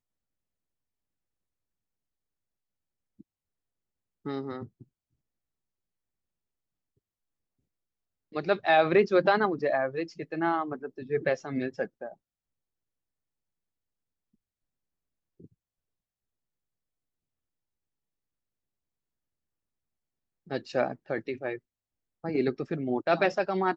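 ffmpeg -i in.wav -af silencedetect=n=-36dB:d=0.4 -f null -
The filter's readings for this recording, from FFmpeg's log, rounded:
silence_start: 0.00
silence_end: 4.26 | silence_duration: 4.26
silence_start: 4.65
silence_end: 8.35 | silence_duration: 3.71
silence_start: 12.12
silence_end: 20.51 | silence_duration: 8.39
silence_start: 21.56
silence_end: 22.24 | silence_duration: 0.68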